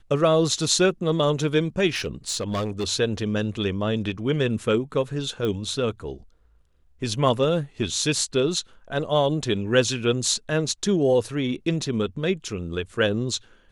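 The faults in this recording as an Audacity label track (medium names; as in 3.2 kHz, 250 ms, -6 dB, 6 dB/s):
1.950000	2.840000	clipped -22 dBFS
5.450000	5.450000	pop -17 dBFS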